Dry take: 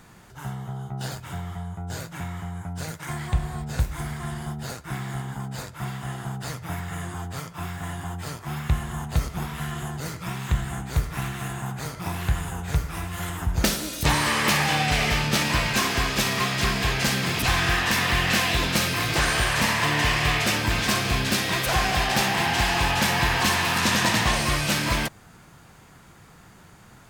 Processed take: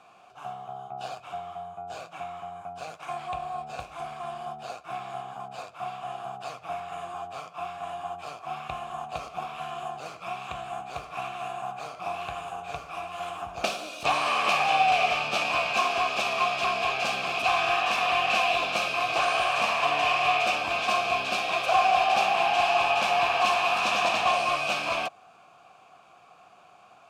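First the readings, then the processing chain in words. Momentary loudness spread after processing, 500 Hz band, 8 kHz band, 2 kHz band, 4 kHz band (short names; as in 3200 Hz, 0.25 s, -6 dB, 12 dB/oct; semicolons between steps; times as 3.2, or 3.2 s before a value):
16 LU, +2.0 dB, -12.5 dB, -3.5 dB, -5.0 dB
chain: median filter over 3 samples; vowel filter a; high shelf 3300 Hz +11 dB; gain +8.5 dB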